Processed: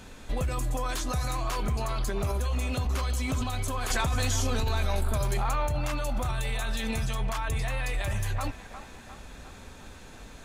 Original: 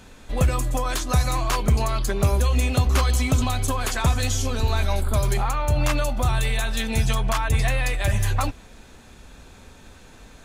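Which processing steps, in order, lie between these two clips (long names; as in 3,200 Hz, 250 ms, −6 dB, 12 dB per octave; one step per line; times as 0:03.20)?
brickwall limiter −22 dBFS, peak gain reduction 11.5 dB
delay with a band-pass on its return 355 ms, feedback 59%, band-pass 1,100 Hz, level −9.5 dB
0:03.90–0:05.67: envelope flattener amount 100%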